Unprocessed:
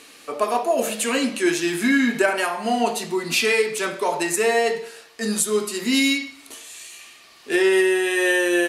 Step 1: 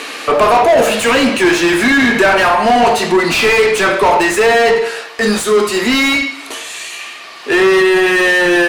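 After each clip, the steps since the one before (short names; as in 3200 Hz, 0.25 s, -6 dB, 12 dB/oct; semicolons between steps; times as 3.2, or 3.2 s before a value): vocal rider within 4 dB 2 s; overdrive pedal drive 28 dB, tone 1700 Hz, clips at -4 dBFS; gain +2.5 dB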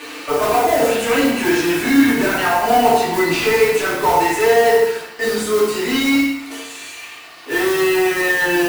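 modulation noise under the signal 14 dB; FDN reverb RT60 0.65 s, low-frequency decay 1.3×, high-frequency decay 0.7×, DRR -6.5 dB; gain -13.5 dB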